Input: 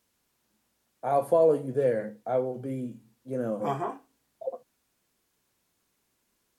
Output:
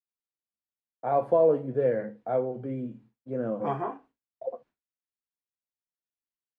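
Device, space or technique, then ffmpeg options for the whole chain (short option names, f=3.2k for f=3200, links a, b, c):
hearing-loss simulation: -af "lowpass=2.4k,agate=range=-33dB:threshold=-50dB:ratio=3:detection=peak"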